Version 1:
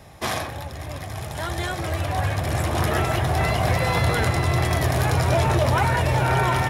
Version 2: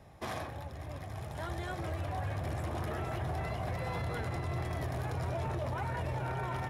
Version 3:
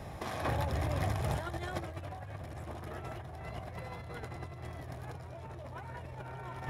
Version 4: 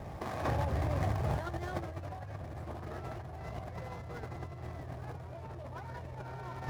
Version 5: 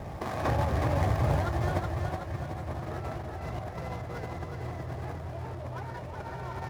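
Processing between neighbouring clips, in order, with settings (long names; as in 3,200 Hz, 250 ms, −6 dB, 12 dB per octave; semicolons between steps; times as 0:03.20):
high-shelf EQ 2,100 Hz −8.5 dB; brickwall limiter −19 dBFS, peak gain reduction 8.5 dB; level −9 dB
compressor whose output falls as the input rises −42 dBFS, ratio −0.5; level +4.5 dB
running median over 15 samples; level +1 dB
repeating echo 372 ms, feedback 51%, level −5 dB; level +4.5 dB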